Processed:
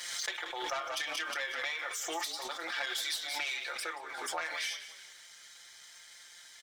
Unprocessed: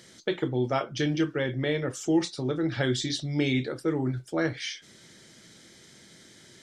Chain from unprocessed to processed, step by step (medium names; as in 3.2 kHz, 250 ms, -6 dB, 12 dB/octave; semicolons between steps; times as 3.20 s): self-modulated delay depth 0.12 ms; high-pass 830 Hz 24 dB/octave; comb 5.7 ms, depth 97%; waveshaping leveller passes 1; compression, threshold -29 dBFS, peak gain reduction 7.5 dB; frequency-shifting echo 180 ms, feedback 44%, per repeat -33 Hz, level -13 dB; swell ahead of each attack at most 33 dB/s; trim -4 dB